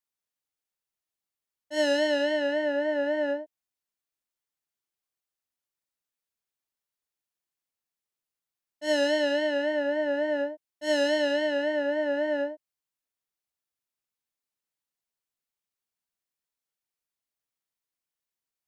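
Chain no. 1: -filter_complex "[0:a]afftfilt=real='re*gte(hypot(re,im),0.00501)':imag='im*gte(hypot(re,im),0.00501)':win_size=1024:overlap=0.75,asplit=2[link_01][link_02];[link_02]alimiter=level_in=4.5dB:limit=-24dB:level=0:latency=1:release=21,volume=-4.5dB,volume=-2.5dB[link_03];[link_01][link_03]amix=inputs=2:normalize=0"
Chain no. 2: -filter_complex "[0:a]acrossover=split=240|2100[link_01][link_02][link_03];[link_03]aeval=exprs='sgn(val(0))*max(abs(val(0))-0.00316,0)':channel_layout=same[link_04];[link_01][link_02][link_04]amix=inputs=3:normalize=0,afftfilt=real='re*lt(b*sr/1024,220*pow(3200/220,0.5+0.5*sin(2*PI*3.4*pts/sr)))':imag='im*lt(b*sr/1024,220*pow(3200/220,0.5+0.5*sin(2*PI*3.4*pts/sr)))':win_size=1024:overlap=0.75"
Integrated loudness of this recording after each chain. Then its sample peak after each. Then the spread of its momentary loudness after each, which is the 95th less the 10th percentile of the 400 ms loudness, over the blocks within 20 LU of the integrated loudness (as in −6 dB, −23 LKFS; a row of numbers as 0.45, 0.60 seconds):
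−25.0, −30.0 LKFS; −15.5, −15.0 dBFS; 9, 6 LU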